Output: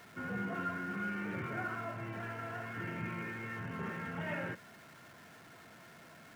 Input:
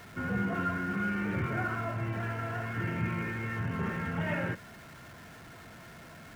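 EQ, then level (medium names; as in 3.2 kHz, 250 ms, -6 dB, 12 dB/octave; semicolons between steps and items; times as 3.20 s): peaking EQ 61 Hz -8.5 dB 0.8 oct; bass shelf 94 Hz -11.5 dB; -5.0 dB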